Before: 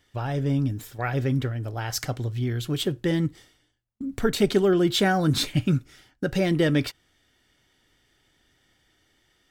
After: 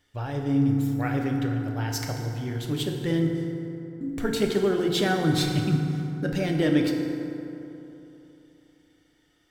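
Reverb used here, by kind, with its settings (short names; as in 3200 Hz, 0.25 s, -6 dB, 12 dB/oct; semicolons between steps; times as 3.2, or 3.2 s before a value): FDN reverb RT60 3.2 s, high-frequency decay 0.45×, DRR 1.5 dB; gain -4 dB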